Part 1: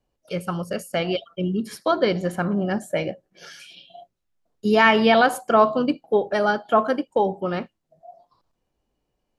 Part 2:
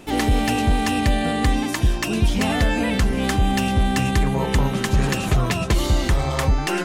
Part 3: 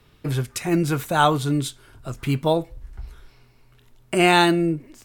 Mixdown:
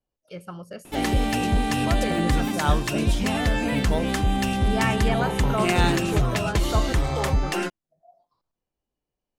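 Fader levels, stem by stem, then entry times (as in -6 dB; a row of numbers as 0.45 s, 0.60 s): -10.5 dB, -3.5 dB, -8.0 dB; 0.00 s, 0.85 s, 1.45 s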